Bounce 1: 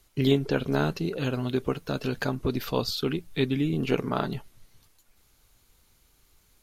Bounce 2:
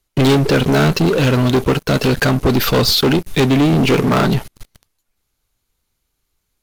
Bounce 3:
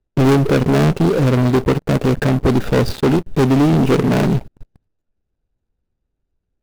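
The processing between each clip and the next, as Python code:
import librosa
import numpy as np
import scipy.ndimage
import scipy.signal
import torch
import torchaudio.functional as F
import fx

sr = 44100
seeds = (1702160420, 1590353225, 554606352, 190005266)

y1 = fx.leveller(x, sr, passes=5)
y1 = F.gain(torch.from_numpy(y1), 1.5).numpy()
y2 = scipy.signal.medfilt(y1, 41)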